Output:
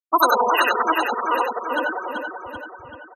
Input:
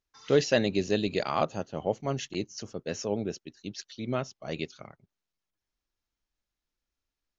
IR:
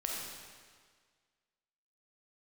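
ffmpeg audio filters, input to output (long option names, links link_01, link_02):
-filter_complex "[0:a]aeval=exprs='val(0)+0.5*0.0316*sgn(val(0))':channel_layout=same,asplit=2[link_01][link_02];[link_02]aecho=0:1:29.15|166.2|224.5:0.251|0.562|0.794[link_03];[link_01][link_03]amix=inputs=2:normalize=0,adynamicequalizer=threshold=0.0112:dfrequency=120:dqfactor=1.6:tfrequency=120:tqfactor=1.6:attack=5:release=100:ratio=0.375:range=2:mode=cutabove:tftype=bell,asetrate=103194,aresample=44100,highpass=frequency=91:width=0.5412,highpass=frequency=91:width=1.3066,afftfilt=real='re*gte(hypot(re,im),0.126)':imag='im*gte(hypot(re,im),0.126)':win_size=1024:overlap=0.75,highshelf=frequency=3100:gain=8.5,asplit=2[link_04][link_05];[link_05]aecho=0:1:384|768|1152|1536|1920|2304:0.501|0.261|0.136|0.0705|0.0366|0.0191[link_06];[link_04][link_06]amix=inputs=2:normalize=0,volume=4.5dB"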